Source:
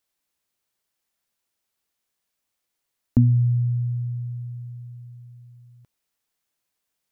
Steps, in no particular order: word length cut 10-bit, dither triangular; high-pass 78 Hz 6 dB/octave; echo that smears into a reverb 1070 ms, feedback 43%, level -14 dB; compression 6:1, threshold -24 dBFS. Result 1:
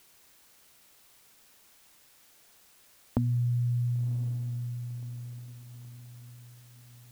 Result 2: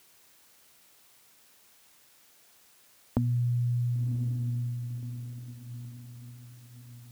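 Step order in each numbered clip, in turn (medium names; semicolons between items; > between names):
compression > high-pass > word length cut > echo that smears into a reverb; echo that smears into a reverb > compression > word length cut > high-pass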